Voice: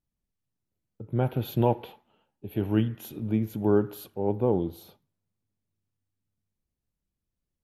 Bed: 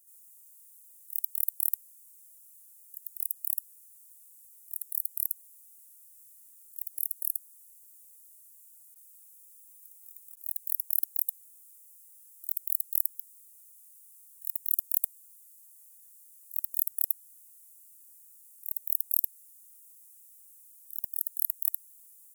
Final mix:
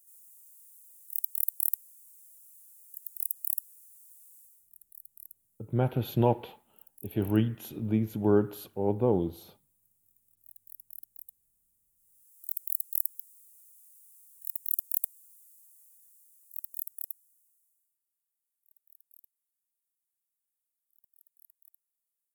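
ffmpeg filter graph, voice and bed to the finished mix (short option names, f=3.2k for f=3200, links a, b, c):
-filter_complex "[0:a]adelay=4600,volume=-1dB[a];[1:a]volume=16.5dB,afade=t=out:st=4.37:d=0.34:silence=0.11885,afade=t=in:st=11.95:d=0.58:silence=0.149624,afade=t=out:st=15.42:d=2.57:silence=0.0354813[b];[a][b]amix=inputs=2:normalize=0"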